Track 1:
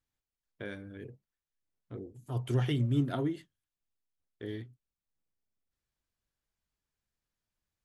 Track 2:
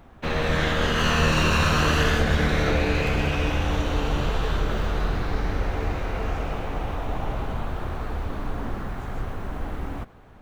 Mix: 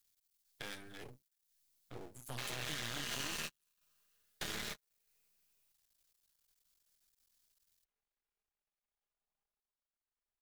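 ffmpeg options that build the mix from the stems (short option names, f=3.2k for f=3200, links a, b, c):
-filter_complex "[0:a]equalizer=f=4.4k:w=1.4:g=4,asoftclip=type=tanh:threshold=-28dB,volume=-1.5dB,asplit=2[a][b];[1:a]lowshelf=f=340:g=-7,aecho=1:1:4.9:0.65,adelay=2150,volume=-12dB[c];[b]apad=whole_len=554377[d];[c][d]sidechaingate=range=-56dB:threshold=-52dB:ratio=16:detection=peak[e];[a][e]amix=inputs=2:normalize=0,acrossover=split=88|340[f][g][h];[f]acompressor=threshold=-54dB:ratio=4[i];[g]acompressor=threshold=-45dB:ratio=4[j];[h]acompressor=threshold=-45dB:ratio=4[k];[i][j][k]amix=inputs=3:normalize=0,aeval=exprs='max(val(0),0)':c=same,crystalizer=i=7:c=0"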